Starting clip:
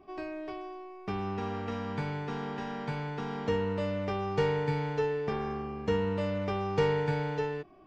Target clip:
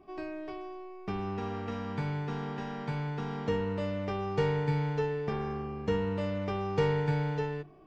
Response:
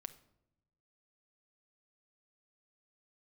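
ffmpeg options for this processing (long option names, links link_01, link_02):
-filter_complex "[0:a]asplit=2[link_01][link_02];[1:a]atrim=start_sample=2205,lowshelf=frequency=430:gain=7[link_03];[link_02][link_03]afir=irnorm=-1:irlink=0,volume=-2.5dB[link_04];[link_01][link_04]amix=inputs=2:normalize=0,volume=-5dB"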